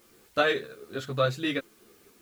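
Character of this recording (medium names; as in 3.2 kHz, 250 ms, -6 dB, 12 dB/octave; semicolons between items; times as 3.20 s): tremolo saw up 2.4 Hz, depth 40%; a quantiser's noise floor 10-bit, dither triangular; a shimmering, thickened sound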